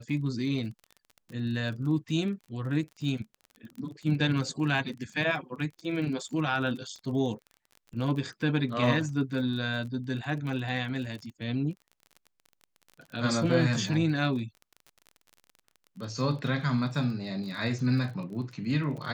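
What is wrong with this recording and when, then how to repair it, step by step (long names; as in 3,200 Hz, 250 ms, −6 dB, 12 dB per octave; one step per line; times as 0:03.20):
surface crackle 32 per second −38 dBFS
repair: click removal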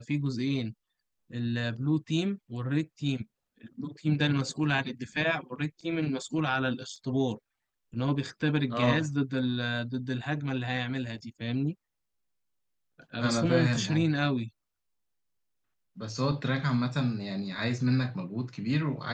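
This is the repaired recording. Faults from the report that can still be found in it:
none of them is left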